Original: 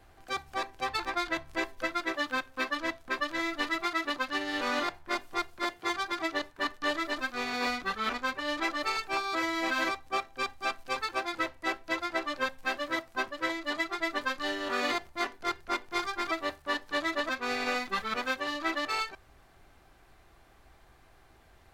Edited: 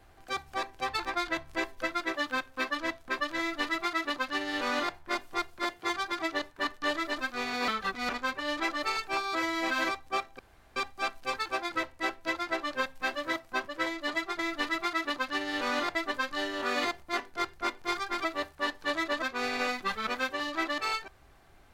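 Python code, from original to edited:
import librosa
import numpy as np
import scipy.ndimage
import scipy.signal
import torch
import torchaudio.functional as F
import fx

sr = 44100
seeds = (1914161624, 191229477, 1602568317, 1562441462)

y = fx.edit(x, sr, fx.duplicate(start_s=3.39, length_s=1.56, to_s=14.02),
    fx.reverse_span(start_s=7.68, length_s=0.41),
    fx.insert_room_tone(at_s=10.39, length_s=0.37), tone=tone)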